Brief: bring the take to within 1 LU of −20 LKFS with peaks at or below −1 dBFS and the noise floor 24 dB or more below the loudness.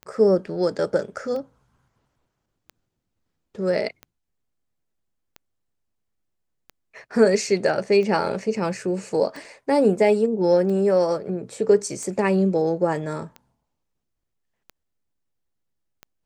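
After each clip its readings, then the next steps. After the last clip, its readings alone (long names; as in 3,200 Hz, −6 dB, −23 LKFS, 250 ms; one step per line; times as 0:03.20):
number of clicks 13; integrated loudness −22.0 LKFS; sample peak −6.0 dBFS; target loudness −20.0 LKFS
→ click removal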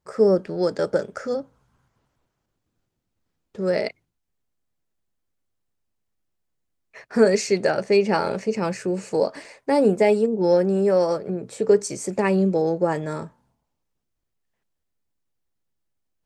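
number of clicks 0; integrated loudness −22.0 LKFS; sample peak −6.0 dBFS; target loudness −20.0 LKFS
→ level +2 dB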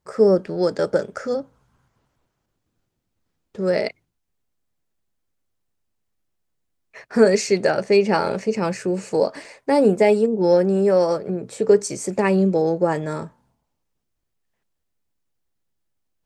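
integrated loudness −20.0 LKFS; sample peak −4.0 dBFS; background noise floor −76 dBFS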